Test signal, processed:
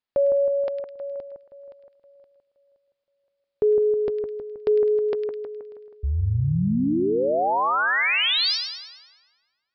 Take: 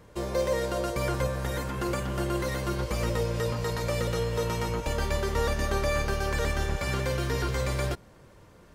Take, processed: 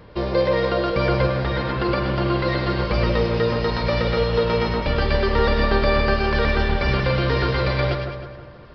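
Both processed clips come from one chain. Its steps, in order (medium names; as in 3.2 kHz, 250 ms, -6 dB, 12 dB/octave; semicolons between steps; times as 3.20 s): on a send: two-band feedback delay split 1.8 kHz, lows 159 ms, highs 104 ms, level -6 dB; on the sum: resampled via 11.025 kHz; trim +8 dB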